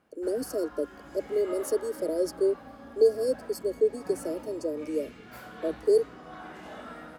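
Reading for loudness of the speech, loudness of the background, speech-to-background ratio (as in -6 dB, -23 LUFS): -29.0 LUFS, -45.0 LUFS, 16.0 dB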